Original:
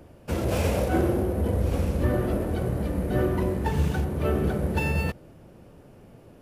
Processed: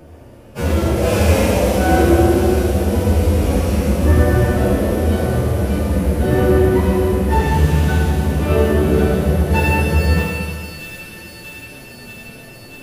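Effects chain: on a send: thin delay 0.317 s, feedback 78%, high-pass 2700 Hz, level -6 dB; on the sum: time stretch by phase-locked vocoder 2×; Schroeder reverb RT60 1.8 s, combs from 26 ms, DRR -2 dB; gain +7 dB

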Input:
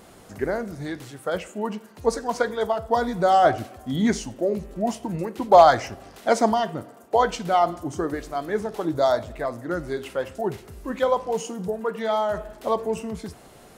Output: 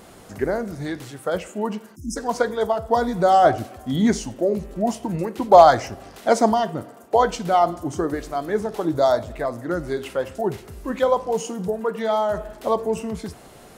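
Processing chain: spectral delete 1.96–2.16, 350–5000 Hz; dynamic EQ 2300 Hz, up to -4 dB, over -36 dBFS, Q 0.74; gain +3 dB

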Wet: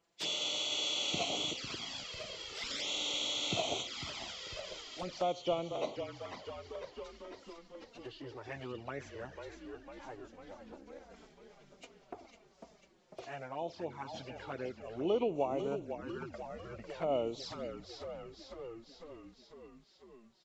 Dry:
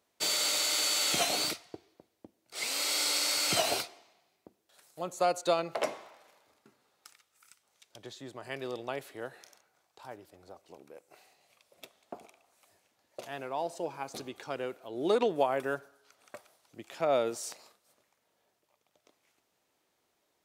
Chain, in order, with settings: nonlinear frequency compression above 1900 Hz 1.5:1; low shelf 180 Hz +6.5 dB; frequency-shifting echo 0.498 s, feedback 63%, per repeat -39 Hz, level -9 dB; envelope flanger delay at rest 6 ms, full sweep at -29 dBFS; in parallel at +1 dB: compressor, threshold -44 dBFS, peak gain reduction 20 dB; on the sum: gain -5.5 dB

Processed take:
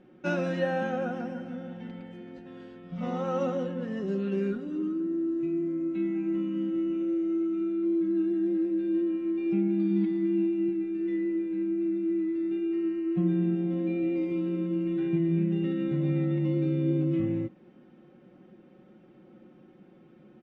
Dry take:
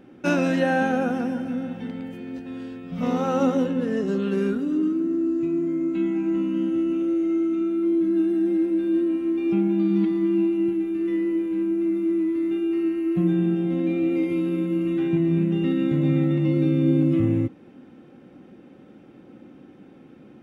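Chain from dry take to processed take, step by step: air absorption 86 m; comb 5.5 ms, depth 62%; gain -8 dB

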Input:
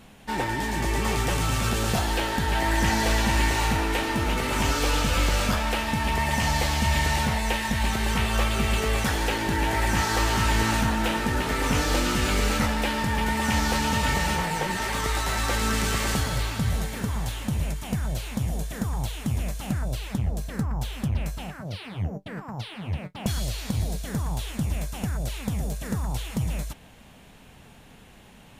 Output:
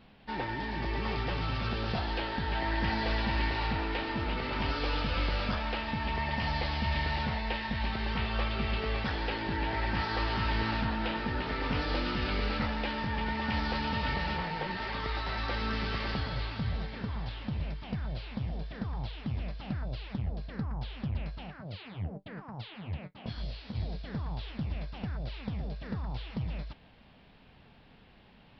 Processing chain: downsampling 11025 Hz; 23.11–23.74 detuned doubles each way 45 cents -> 56 cents; gain -7.5 dB

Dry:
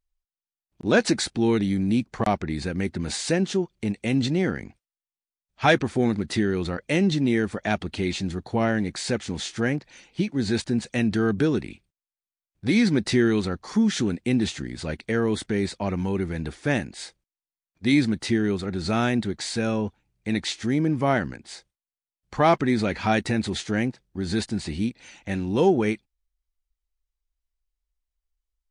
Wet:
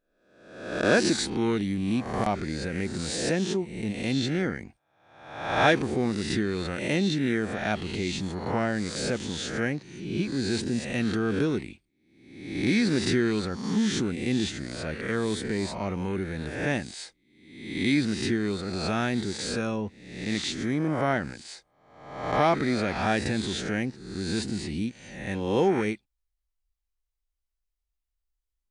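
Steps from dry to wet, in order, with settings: spectral swells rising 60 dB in 0.85 s; gain -5 dB

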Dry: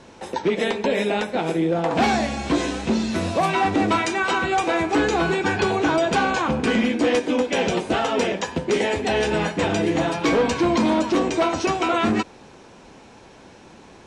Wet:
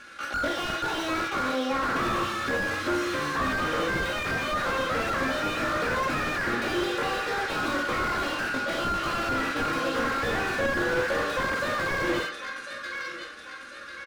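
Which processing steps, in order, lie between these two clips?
resonant low shelf 700 Hz -9 dB, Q 3; comb 5.7 ms, depth 53%; de-hum 276.1 Hz, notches 18; in parallel at -12 dB: crossover distortion -35 dBFS; on the sum: pitch shift +8 st; air absorption 52 m; feedback echo 1.046 s, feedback 45%, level -17.5 dB; on a send at -3.5 dB: reverb RT60 0.45 s, pre-delay 31 ms; on the sum: slew limiter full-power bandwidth 66 Hz

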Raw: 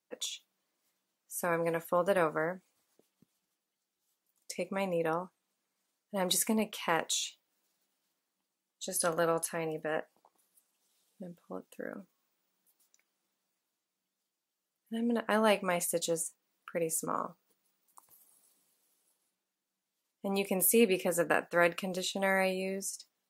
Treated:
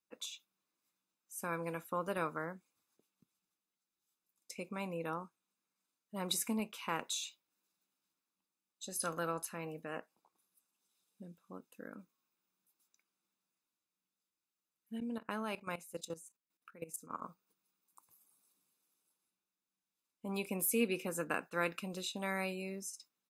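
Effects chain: comb 0.8 ms, depth 42%; 15–17.22 level quantiser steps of 16 dB; gain -7 dB

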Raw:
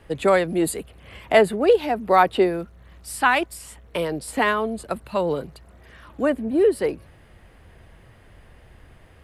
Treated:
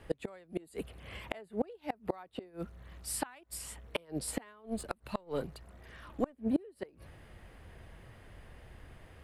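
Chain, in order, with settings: 4.66–6.33 half-wave gain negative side -3 dB; flipped gate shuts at -15 dBFS, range -31 dB; gain -3.5 dB

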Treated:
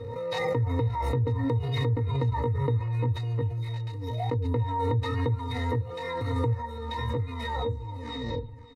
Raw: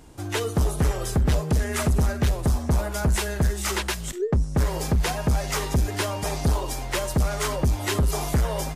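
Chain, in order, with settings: tape stop at the end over 1.43 s; LPF 8200 Hz 24 dB/oct; low shelf 86 Hz -6 dB; comb 4.1 ms, depth 95%; compressor 8:1, threshold -25 dBFS, peak gain reduction 9 dB; pitch shift +9.5 st; octave resonator A#, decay 0.14 s; echo 0.553 s -16.5 dB; backwards sustainer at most 23 dB/s; gain +6.5 dB

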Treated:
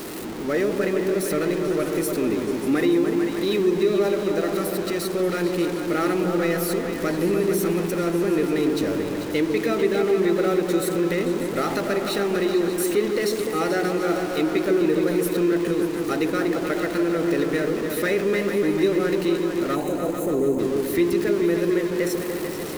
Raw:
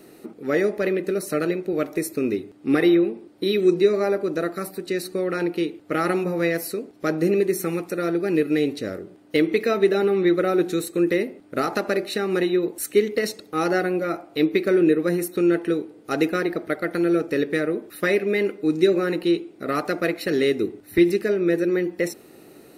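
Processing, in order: zero-crossing step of -25.5 dBFS; spectral gain 19.76–20.59, 1100–6100 Hz -28 dB; repeats that get brighter 0.147 s, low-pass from 400 Hz, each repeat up 2 oct, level -3 dB; in parallel at -2 dB: limiter -11 dBFS, peak gain reduction 6.5 dB; on the sum: gain -8.5 dB

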